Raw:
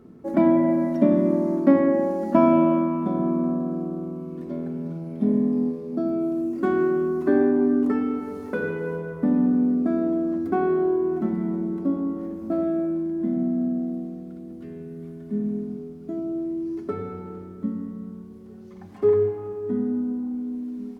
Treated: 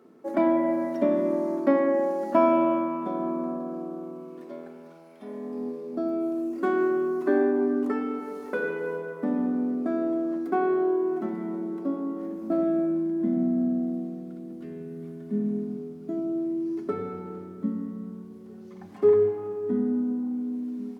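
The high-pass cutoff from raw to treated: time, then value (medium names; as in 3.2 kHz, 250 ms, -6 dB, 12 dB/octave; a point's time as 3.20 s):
4.21 s 390 Hz
5.19 s 940 Hz
5.78 s 340 Hz
12.02 s 340 Hz
12.75 s 150 Hz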